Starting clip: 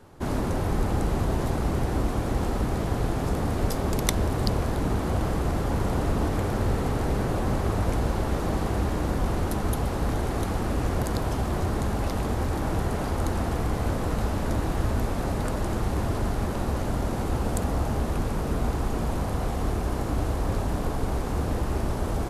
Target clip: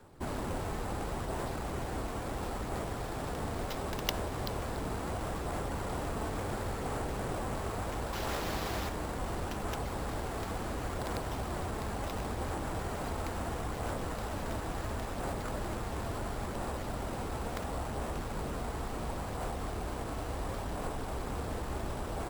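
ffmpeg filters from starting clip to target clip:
-filter_complex "[0:a]asettb=1/sr,asplit=3[a][b][c];[a]atrim=end=8.134[d];[b]atrim=start=8.13:end=8.89,asetpts=PTS-STARTPTS,afade=t=in:d=0.004:c=qsin,afade=t=out:st=0.756:d=0.004:c=qsin,highshelf=f=2.2k:g=10[e];[c]atrim=start=8.886[f];[d][e]acrossfade=d=0.004:c1=hsin:c2=qsin[g];[g][f]acrossfade=d=0.004:c1=qsin:c2=hsin,acrossover=split=460[h][i];[h]alimiter=level_in=1dB:limit=-24dB:level=0:latency=1:release=309,volume=-1dB[j];[i]aphaser=in_gain=1:out_gain=1:delay=4.6:decay=0.26:speed=0.72:type=sinusoidal[k];[j][k]amix=inputs=2:normalize=0,acrusher=samples=5:mix=1:aa=0.000001,volume=-6dB"

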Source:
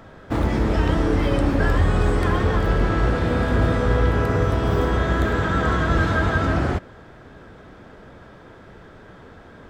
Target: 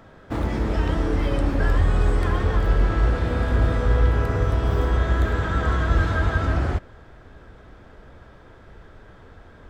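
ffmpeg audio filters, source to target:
-af "asubboost=boost=3:cutoff=88,volume=-4dB"

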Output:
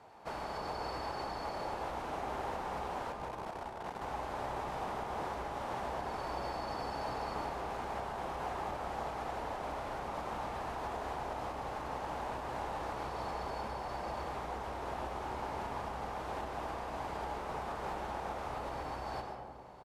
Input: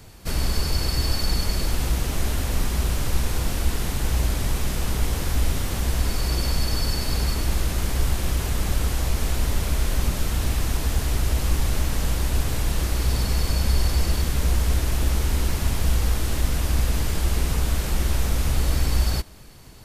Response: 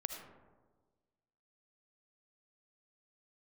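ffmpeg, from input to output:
-filter_complex "[0:a]acompressor=threshold=-20dB:ratio=6,asettb=1/sr,asplit=3[a][b][c];[a]atrim=end=3.124[d];[b]atrim=start=3.12:end=4.02,asetpts=PTS-STARTPTS,afade=t=in:d=0.004:c=qsin,afade=t=out:st=0.896:d=0.004:c=qsin,aeval=exprs='max(val(0),0)':c=same[e];[c]atrim=start=4.016[f];[d][e]acrossfade=d=0.004:c1=hsin:c2=qsin[g];[g][f]acrossfade=d=0.004:c1=qsin:c2=hsin,bandpass=f=830:t=q:w=2.4:csg=0,asplit=2[h][i];[i]adelay=32,volume=-13.5dB[j];[h][j]amix=inputs=2:normalize=0[k];[1:a]atrim=start_sample=2205,asetrate=28224,aresample=44100[l];[k][l]afir=irnorm=-1:irlink=0,volume=2.5dB"

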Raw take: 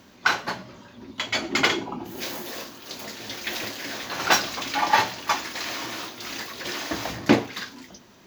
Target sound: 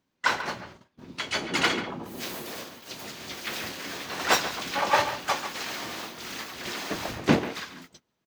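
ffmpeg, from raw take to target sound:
-filter_complex "[0:a]asplit=4[a][b][c][d];[b]asetrate=29433,aresample=44100,atempo=1.49831,volume=-4dB[e];[c]asetrate=55563,aresample=44100,atempo=0.793701,volume=-18dB[f];[d]asetrate=58866,aresample=44100,atempo=0.749154,volume=-7dB[g];[a][e][f][g]amix=inputs=4:normalize=0,asplit=2[h][i];[i]adelay=140,highpass=300,lowpass=3.4k,asoftclip=type=hard:threshold=-11dB,volume=-10dB[j];[h][j]amix=inputs=2:normalize=0,agate=range=-23dB:threshold=-41dB:ratio=16:detection=peak,volume=-5dB"

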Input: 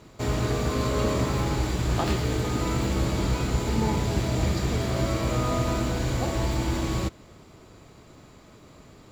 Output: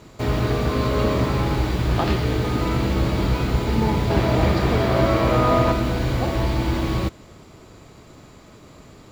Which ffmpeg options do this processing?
-filter_complex "[0:a]asettb=1/sr,asplit=3[a][b][c];[a]atrim=end=4.104[d];[b]atrim=start=4.1:end=5.72,asetpts=PTS-STARTPTS,afade=t=in:d=0.004:c=qsin,afade=t=out:st=1.616:d=0.004:c=qsin,equalizer=f=840:w=0.41:g=6.5[e];[c]atrim=start=5.716[f];[d][e]acrossfade=d=0.004:c1=hsin:c2=qsin[g];[g][f]acrossfade=d=0.004:c1=qsin:c2=hsin,acrossover=split=5600[h][i];[i]aeval=exprs='(mod(266*val(0)+1,2)-1)/266':c=same[j];[h][j]amix=inputs=2:normalize=0,volume=4.5dB"

